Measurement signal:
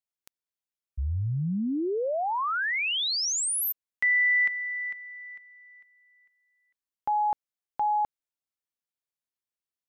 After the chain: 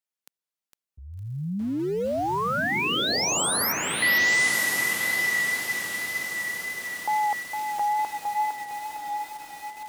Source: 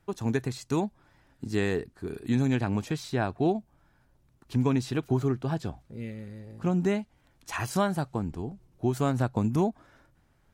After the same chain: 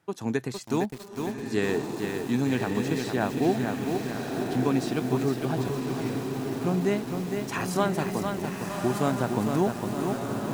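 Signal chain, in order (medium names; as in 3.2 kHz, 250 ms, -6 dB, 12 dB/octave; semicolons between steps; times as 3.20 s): echo that smears into a reverb 1170 ms, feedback 51%, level -5 dB; wow and flutter 25 cents; high-pass 160 Hz 12 dB/octave; bit-crushed delay 458 ms, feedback 55%, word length 7-bit, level -5 dB; trim +1 dB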